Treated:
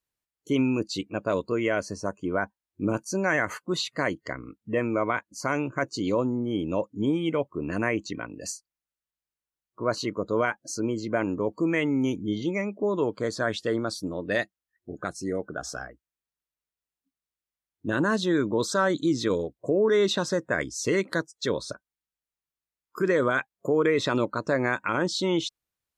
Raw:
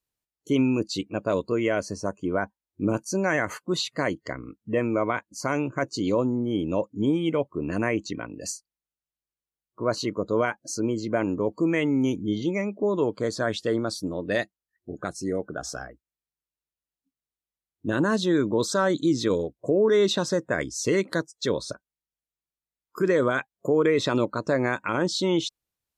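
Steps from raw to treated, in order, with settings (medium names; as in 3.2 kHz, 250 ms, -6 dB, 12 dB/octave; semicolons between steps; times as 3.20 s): peaking EQ 1.6 kHz +3.5 dB 1.5 oct; trim -2 dB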